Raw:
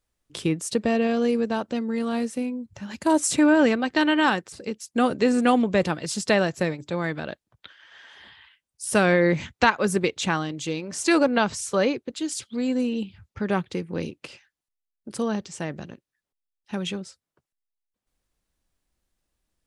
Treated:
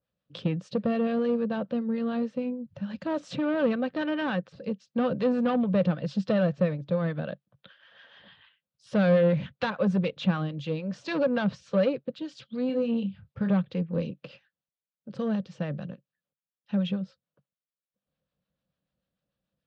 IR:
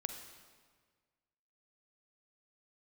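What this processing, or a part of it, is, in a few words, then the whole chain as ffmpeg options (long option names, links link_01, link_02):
guitar amplifier with harmonic tremolo: -filter_complex "[0:a]asettb=1/sr,asplit=3[link_01][link_02][link_03];[link_01]atrim=end=12.664[link_04];[link_02]atrim=start=12.66:end=13.53,asetpts=PTS-STARTPTS,afade=type=in:duration=0.004:curve=qsin,afade=type=out:start_time=0.866:duration=0.004:curve=qsin,asplit=2[link_05][link_06];[link_06]adelay=30,volume=-7dB[link_07];[link_05][link_07]amix=inputs=2:normalize=0,atrim=end_sample=38367[link_08];[link_03]atrim=start=13.526[link_09];[link_04][link_08]acrossfade=duration=0.004:curve1=hsin:curve2=qsin[link_10];[link_10][link_09]acrossfade=duration=0.004:curve1=qsin:curve2=hsin,acrossover=split=760[link_11][link_12];[link_11]aeval=exprs='val(0)*(1-0.5/2+0.5/2*cos(2*PI*6.8*n/s))':channel_layout=same[link_13];[link_12]aeval=exprs='val(0)*(1-0.5/2-0.5/2*cos(2*PI*6.8*n/s))':channel_layout=same[link_14];[link_13][link_14]amix=inputs=2:normalize=0,asoftclip=type=tanh:threshold=-21dB,highpass=87,equalizer=frequency=140:width_type=q:width=4:gain=9,equalizer=frequency=190:width_type=q:width=4:gain=9,equalizer=frequency=370:width_type=q:width=4:gain=-9,equalizer=frequency=530:width_type=q:width=4:gain=10,equalizer=frequency=880:width_type=q:width=4:gain=-5,equalizer=frequency=2100:width_type=q:width=4:gain=-7,lowpass=frequency=4000:width=0.5412,lowpass=frequency=4000:width=1.3066,adynamicequalizer=threshold=0.00355:dfrequency=3600:dqfactor=0.7:tfrequency=3600:tqfactor=0.7:attack=5:release=100:ratio=0.375:range=2.5:mode=cutabove:tftype=highshelf,volume=-1.5dB"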